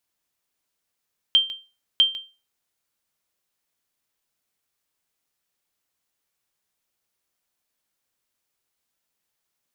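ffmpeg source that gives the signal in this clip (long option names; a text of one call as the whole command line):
ffmpeg -f lavfi -i "aevalsrc='0.355*(sin(2*PI*3150*mod(t,0.65))*exp(-6.91*mod(t,0.65)/0.31)+0.178*sin(2*PI*3150*max(mod(t,0.65)-0.15,0))*exp(-6.91*max(mod(t,0.65)-0.15,0)/0.31))':duration=1.3:sample_rate=44100" out.wav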